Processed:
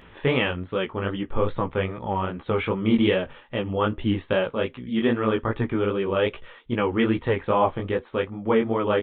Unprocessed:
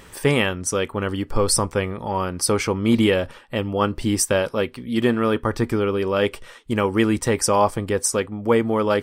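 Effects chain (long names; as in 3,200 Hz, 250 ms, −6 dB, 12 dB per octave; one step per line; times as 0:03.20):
downsampling to 8,000 Hz
chorus effect 2.5 Hz, delay 15.5 ms, depth 6.8 ms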